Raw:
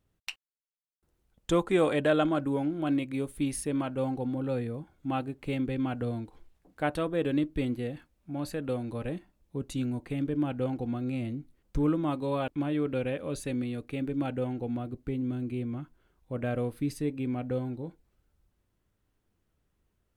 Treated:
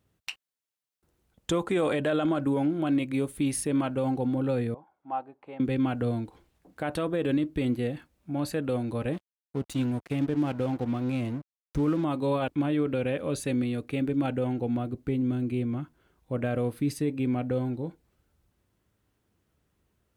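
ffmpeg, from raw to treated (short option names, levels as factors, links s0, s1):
-filter_complex "[0:a]asettb=1/sr,asplit=3[s0][s1][s2];[s0]atrim=end=4.744[s3];[s1]atrim=start=4.74:end=5.6,asetpts=PTS-STARTPTS,afade=t=in:d=0.004:c=qsin,afade=t=out:st=0.856:d=0.004:c=qsin,bandpass=f=850:t=q:w=2.9[s4];[s2]atrim=start=5.596[s5];[s3][s4]acrossfade=d=0.004:c1=hsin:c2=qsin[s6];[s6][s5]acrossfade=d=0.004:c1=qsin:c2=hsin,asettb=1/sr,asplit=3[s7][s8][s9];[s7]atrim=end=9.134[s10];[s8]atrim=start=9.13:end=12.04,asetpts=PTS-STARTPTS,afade=t=in:d=0.004:c=qsin,afade=t=out:st=2.906:d=0.004:c=qsin,aeval=exprs='sgn(val(0))*max(abs(val(0))-0.00447,0)':c=same[s11];[s9]atrim=start=12.036[s12];[s10][s11]acrossfade=d=0.004:c1=hsin:c2=qsin[s13];[s13][s12]acrossfade=d=0.004:c1=qsin:c2=hsin,highpass=61,alimiter=limit=0.075:level=0:latency=1:release=31,volume=1.68"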